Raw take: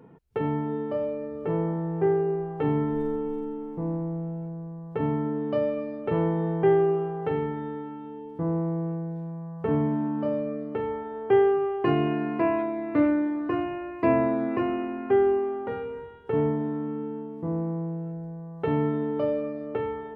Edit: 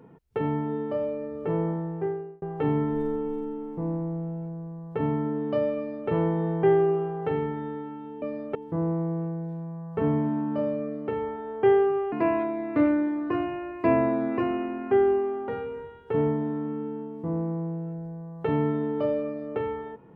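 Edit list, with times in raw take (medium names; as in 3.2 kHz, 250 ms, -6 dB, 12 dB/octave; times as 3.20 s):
1.70–2.42 s: fade out
5.76–6.09 s: copy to 8.22 s
11.79–12.31 s: delete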